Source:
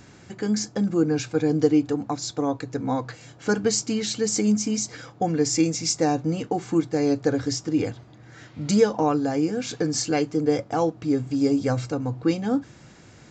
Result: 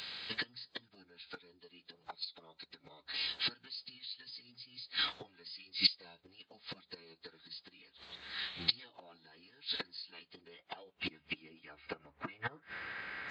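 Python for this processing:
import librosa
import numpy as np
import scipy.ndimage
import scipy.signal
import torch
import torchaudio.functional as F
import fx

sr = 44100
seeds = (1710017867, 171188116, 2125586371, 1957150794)

p1 = fx.rider(x, sr, range_db=10, speed_s=0.5)
p2 = x + (p1 * 10.0 ** (1.5 / 20.0))
p3 = fx.gate_flip(p2, sr, shuts_db=-12.0, range_db=-30)
p4 = fx.filter_sweep_bandpass(p3, sr, from_hz=4000.0, to_hz=1800.0, start_s=9.93, end_s=12.63, q=2.4)
p5 = fx.pitch_keep_formants(p4, sr, semitones=-9.5)
y = p5 * 10.0 ** (11.5 / 20.0)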